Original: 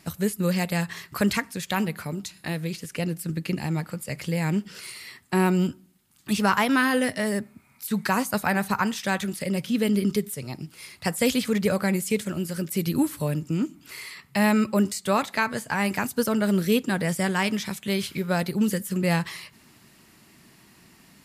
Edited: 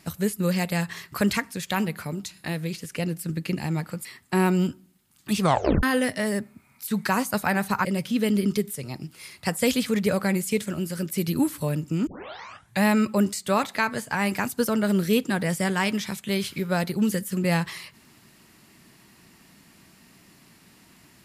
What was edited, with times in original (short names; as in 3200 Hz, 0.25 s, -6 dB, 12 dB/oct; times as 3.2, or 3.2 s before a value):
4.05–5.05 cut
6.39 tape stop 0.44 s
8.85–9.44 cut
13.66 tape start 0.76 s